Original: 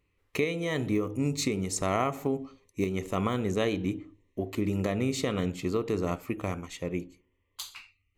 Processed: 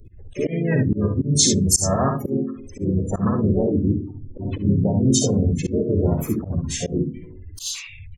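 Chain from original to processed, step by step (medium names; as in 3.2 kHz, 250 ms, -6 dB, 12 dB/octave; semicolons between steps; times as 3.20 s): jump at every zero crossing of -29.5 dBFS; expander -26 dBFS; doubling 30 ms -11.5 dB; dynamic bell 6.2 kHz, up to +4 dB, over -52 dBFS, Q 2.2; spectral gate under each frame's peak -10 dB strong; tone controls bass +9 dB, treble +14 dB; hum notches 60/120/180/240 Hz; on a send at -18 dB: reverberation RT60 0.30 s, pre-delay 5 ms; on the sum: harmony voices -3 st -6 dB, +5 st -12 dB; in parallel at +3 dB: compression, threshold -30 dBFS, peak gain reduction 17 dB; on the sum: early reflections 54 ms -8.5 dB, 68 ms -6.5 dB; slow attack 112 ms; trim -1 dB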